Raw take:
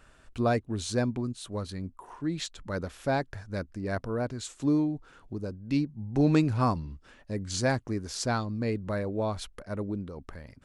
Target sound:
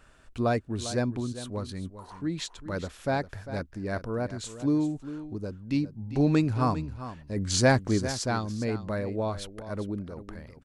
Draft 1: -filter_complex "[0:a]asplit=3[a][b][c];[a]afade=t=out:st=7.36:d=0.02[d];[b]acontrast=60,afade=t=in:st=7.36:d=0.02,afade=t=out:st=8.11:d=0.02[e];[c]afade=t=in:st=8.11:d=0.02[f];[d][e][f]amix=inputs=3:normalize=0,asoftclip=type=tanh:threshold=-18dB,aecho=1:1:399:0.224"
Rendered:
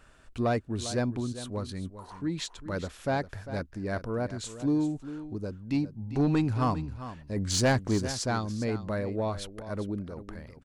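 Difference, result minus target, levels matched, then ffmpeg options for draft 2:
soft clip: distortion +18 dB
-filter_complex "[0:a]asplit=3[a][b][c];[a]afade=t=out:st=7.36:d=0.02[d];[b]acontrast=60,afade=t=in:st=7.36:d=0.02,afade=t=out:st=8.11:d=0.02[e];[c]afade=t=in:st=8.11:d=0.02[f];[d][e][f]amix=inputs=3:normalize=0,asoftclip=type=tanh:threshold=-6dB,aecho=1:1:399:0.224"

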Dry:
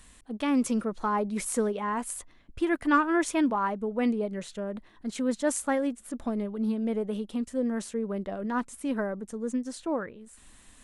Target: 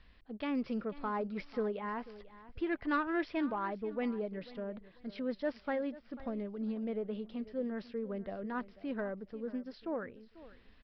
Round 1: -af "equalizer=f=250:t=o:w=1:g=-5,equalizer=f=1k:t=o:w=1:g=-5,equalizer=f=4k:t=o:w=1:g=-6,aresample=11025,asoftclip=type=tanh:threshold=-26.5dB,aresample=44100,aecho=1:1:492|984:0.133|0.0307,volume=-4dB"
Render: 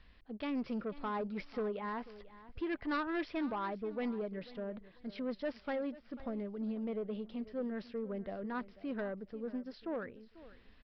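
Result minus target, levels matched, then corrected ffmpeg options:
soft clip: distortion +10 dB
-af "equalizer=f=250:t=o:w=1:g=-5,equalizer=f=1k:t=o:w=1:g=-5,equalizer=f=4k:t=o:w=1:g=-6,aresample=11025,asoftclip=type=tanh:threshold=-19dB,aresample=44100,aecho=1:1:492|984:0.133|0.0307,volume=-4dB"

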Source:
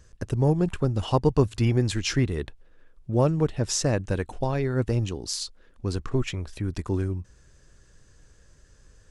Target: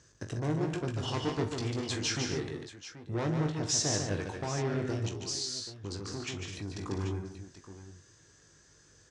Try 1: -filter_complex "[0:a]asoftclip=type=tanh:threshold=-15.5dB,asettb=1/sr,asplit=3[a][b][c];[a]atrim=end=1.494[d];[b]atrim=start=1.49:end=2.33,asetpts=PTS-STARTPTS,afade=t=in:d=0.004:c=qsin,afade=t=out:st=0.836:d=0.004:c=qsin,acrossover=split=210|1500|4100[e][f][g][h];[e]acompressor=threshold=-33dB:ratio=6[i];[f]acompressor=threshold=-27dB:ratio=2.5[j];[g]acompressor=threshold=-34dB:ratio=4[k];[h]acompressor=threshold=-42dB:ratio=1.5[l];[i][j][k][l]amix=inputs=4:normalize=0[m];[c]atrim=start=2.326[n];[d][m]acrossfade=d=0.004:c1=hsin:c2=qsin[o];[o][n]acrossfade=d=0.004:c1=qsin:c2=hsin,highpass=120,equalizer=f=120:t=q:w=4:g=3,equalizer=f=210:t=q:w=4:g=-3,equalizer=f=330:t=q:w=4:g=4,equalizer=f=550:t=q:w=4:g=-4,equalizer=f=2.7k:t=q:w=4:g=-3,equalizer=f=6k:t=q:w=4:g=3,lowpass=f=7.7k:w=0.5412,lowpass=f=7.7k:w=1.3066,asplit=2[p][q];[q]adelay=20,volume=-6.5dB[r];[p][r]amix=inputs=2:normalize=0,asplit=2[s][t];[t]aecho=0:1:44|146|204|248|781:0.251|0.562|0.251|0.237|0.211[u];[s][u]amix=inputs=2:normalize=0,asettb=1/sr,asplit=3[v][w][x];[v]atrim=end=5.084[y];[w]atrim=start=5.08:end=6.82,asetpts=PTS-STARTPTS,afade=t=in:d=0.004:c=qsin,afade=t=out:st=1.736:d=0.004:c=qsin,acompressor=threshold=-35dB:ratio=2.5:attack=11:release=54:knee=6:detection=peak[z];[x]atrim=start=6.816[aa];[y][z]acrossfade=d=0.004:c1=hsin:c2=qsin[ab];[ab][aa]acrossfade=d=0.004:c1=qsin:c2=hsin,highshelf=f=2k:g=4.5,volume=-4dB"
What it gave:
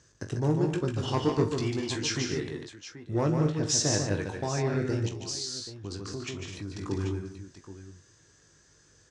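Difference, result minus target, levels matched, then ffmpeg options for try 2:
soft clip: distortion -9 dB
-filter_complex "[0:a]asoftclip=type=tanh:threshold=-25.5dB,asettb=1/sr,asplit=3[a][b][c];[a]atrim=end=1.494[d];[b]atrim=start=1.49:end=2.33,asetpts=PTS-STARTPTS,afade=t=in:d=0.004:c=qsin,afade=t=out:st=0.836:d=0.004:c=qsin,acrossover=split=210|1500|4100[e][f][g][h];[e]acompressor=threshold=-33dB:ratio=6[i];[f]acompressor=threshold=-27dB:ratio=2.5[j];[g]acompressor=threshold=-34dB:ratio=4[k];[h]acompressor=threshold=-42dB:ratio=1.5[l];[i][j][k][l]amix=inputs=4:normalize=0[m];[c]atrim=start=2.326[n];[d][m]acrossfade=d=0.004:c1=hsin:c2=qsin[o];[o][n]acrossfade=d=0.004:c1=qsin:c2=hsin,highpass=120,equalizer=f=120:t=q:w=4:g=3,equalizer=f=210:t=q:w=4:g=-3,equalizer=f=330:t=q:w=4:g=4,equalizer=f=550:t=q:w=4:g=-4,equalizer=f=2.7k:t=q:w=4:g=-3,equalizer=f=6k:t=q:w=4:g=3,lowpass=f=7.7k:w=0.5412,lowpass=f=7.7k:w=1.3066,asplit=2[p][q];[q]adelay=20,volume=-6.5dB[r];[p][r]amix=inputs=2:normalize=0,asplit=2[s][t];[t]aecho=0:1:44|146|204|248|781:0.251|0.562|0.251|0.237|0.211[u];[s][u]amix=inputs=2:normalize=0,asettb=1/sr,asplit=3[v][w][x];[v]atrim=end=5.084[y];[w]atrim=start=5.08:end=6.82,asetpts=PTS-STARTPTS,afade=t=in:d=0.004:c=qsin,afade=t=out:st=1.736:d=0.004:c=qsin,acompressor=threshold=-35dB:ratio=2.5:attack=11:release=54:knee=6:detection=peak[z];[x]atrim=start=6.816[aa];[y][z]acrossfade=d=0.004:c1=hsin:c2=qsin[ab];[ab][aa]acrossfade=d=0.004:c1=qsin:c2=hsin,highshelf=f=2k:g=4.5,volume=-4dB"

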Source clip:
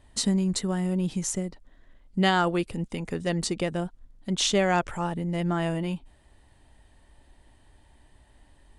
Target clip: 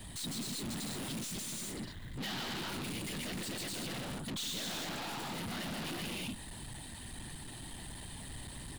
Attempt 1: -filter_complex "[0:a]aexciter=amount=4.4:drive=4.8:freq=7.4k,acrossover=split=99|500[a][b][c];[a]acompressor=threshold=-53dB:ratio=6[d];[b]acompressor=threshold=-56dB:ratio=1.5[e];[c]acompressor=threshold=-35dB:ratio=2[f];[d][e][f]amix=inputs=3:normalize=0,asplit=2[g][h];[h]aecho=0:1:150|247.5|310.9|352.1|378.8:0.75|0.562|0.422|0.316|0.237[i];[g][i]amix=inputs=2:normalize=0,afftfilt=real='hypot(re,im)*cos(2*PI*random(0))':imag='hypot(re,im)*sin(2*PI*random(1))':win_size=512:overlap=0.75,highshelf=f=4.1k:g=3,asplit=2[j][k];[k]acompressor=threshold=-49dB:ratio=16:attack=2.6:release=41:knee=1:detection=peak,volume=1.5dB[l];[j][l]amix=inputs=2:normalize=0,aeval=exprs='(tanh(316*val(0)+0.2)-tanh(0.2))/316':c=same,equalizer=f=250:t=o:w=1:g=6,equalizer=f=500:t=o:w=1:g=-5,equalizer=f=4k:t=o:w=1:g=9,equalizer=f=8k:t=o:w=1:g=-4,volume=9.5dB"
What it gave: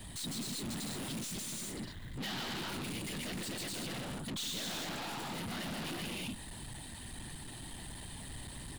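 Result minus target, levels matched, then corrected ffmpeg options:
compressor: peak gain reduction +8 dB
-filter_complex "[0:a]aexciter=amount=4.4:drive=4.8:freq=7.4k,acrossover=split=99|500[a][b][c];[a]acompressor=threshold=-53dB:ratio=6[d];[b]acompressor=threshold=-56dB:ratio=1.5[e];[c]acompressor=threshold=-35dB:ratio=2[f];[d][e][f]amix=inputs=3:normalize=0,asplit=2[g][h];[h]aecho=0:1:150|247.5|310.9|352.1|378.8:0.75|0.562|0.422|0.316|0.237[i];[g][i]amix=inputs=2:normalize=0,afftfilt=real='hypot(re,im)*cos(2*PI*random(0))':imag='hypot(re,im)*sin(2*PI*random(1))':win_size=512:overlap=0.75,highshelf=f=4.1k:g=3,asplit=2[j][k];[k]acompressor=threshold=-40.5dB:ratio=16:attack=2.6:release=41:knee=1:detection=peak,volume=1.5dB[l];[j][l]amix=inputs=2:normalize=0,aeval=exprs='(tanh(316*val(0)+0.2)-tanh(0.2))/316':c=same,equalizer=f=250:t=o:w=1:g=6,equalizer=f=500:t=o:w=1:g=-5,equalizer=f=4k:t=o:w=1:g=9,equalizer=f=8k:t=o:w=1:g=-4,volume=9.5dB"

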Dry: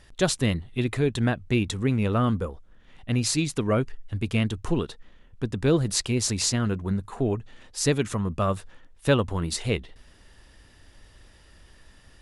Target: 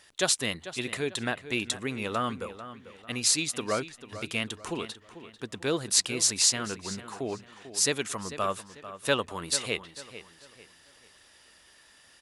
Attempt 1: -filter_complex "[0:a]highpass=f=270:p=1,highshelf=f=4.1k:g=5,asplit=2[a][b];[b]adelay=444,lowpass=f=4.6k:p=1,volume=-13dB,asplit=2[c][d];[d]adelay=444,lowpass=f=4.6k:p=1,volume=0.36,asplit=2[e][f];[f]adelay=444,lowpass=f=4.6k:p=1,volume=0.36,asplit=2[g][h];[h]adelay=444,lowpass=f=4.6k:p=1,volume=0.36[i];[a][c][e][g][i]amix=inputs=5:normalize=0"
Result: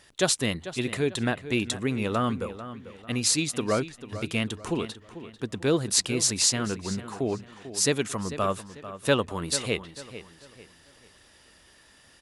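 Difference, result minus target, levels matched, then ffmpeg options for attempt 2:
250 Hz band +5.0 dB
-filter_complex "[0:a]highpass=f=770:p=1,highshelf=f=4.1k:g=5,asplit=2[a][b];[b]adelay=444,lowpass=f=4.6k:p=1,volume=-13dB,asplit=2[c][d];[d]adelay=444,lowpass=f=4.6k:p=1,volume=0.36,asplit=2[e][f];[f]adelay=444,lowpass=f=4.6k:p=1,volume=0.36,asplit=2[g][h];[h]adelay=444,lowpass=f=4.6k:p=1,volume=0.36[i];[a][c][e][g][i]amix=inputs=5:normalize=0"

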